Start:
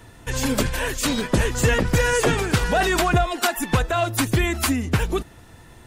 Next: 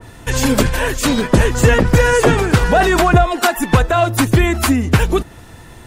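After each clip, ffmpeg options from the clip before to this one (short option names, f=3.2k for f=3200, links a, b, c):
-af "adynamicequalizer=threshold=0.0158:dfrequency=1900:dqfactor=0.7:tfrequency=1900:tqfactor=0.7:attack=5:release=100:ratio=0.375:range=3:mode=cutabove:tftype=highshelf,volume=8dB"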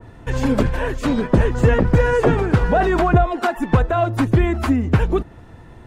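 -af "lowpass=f=1.1k:p=1,volume=-2.5dB"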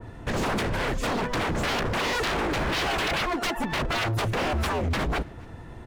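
-filter_complex "[0:a]aeval=exprs='0.0841*(abs(mod(val(0)/0.0841+3,4)-2)-1)':c=same,asplit=2[a][b];[b]adelay=270,highpass=300,lowpass=3.4k,asoftclip=type=hard:threshold=-31.5dB,volume=-20dB[c];[a][c]amix=inputs=2:normalize=0"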